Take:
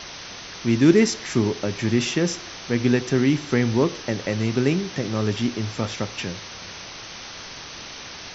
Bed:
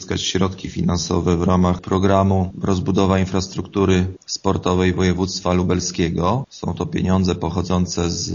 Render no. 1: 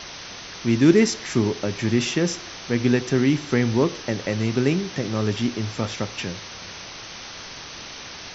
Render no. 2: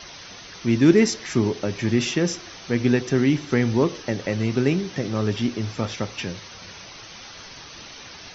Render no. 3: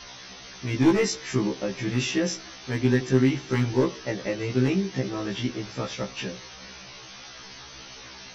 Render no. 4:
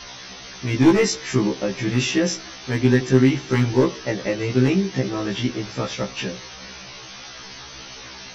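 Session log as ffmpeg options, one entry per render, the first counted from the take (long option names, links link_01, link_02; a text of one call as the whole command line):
ffmpeg -i in.wav -af anull out.wav
ffmpeg -i in.wav -af "afftdn=noise_reduction=7:noise_floor=-38" out.wav
ffmpeg -i in.wav -af "asoftclip=type=hard:threshold=-11dB,afftfilt=real='re*1.73*eq(mod(b,3),0)':imag='im*1.73*eq(mod(b,3),0)':win_size=2048:overlap=0.75" out.wav
ffmpeg -i in.wav -af "volume=5dB" out.wav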